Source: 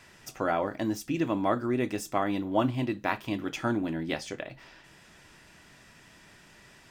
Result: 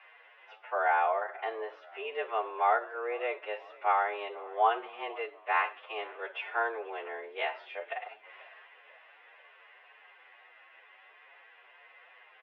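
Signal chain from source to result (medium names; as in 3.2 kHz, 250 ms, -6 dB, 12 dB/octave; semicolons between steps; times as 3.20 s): time stretch by phase-locked vocoder 1.8×; frequency-shifting echo 490 ms, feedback 60%, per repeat -49 Hz, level -22 dB; mistuned SSB +110 Hz 440–2800 Hz; trim +1.5 dB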